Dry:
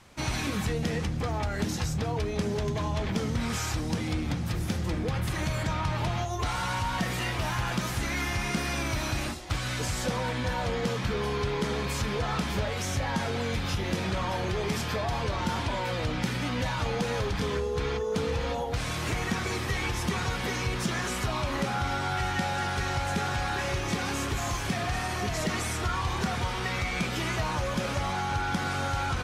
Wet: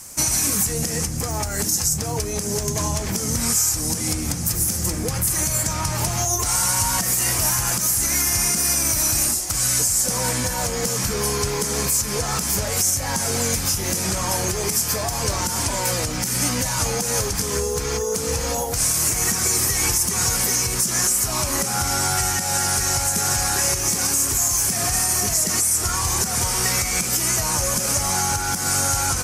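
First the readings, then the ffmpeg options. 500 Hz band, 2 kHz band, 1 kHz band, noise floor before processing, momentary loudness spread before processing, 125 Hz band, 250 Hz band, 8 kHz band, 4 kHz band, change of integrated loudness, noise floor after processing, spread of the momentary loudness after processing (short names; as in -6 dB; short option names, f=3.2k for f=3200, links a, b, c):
+4.0 dB, +3.0 dB, +3.5 dB, -32 dBFS, 1 LU, +3.0 dB, +2.5 dB, +22.5 dB, +9.5 dB, +10.5 dB, -26 dBFS, 5 LU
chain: -af "aexciter=amount=15.5:drive=3.6:freq=5.4k,alimiter=limit=-15dB:level=0:latency=1:release=167,volume=5.5dB"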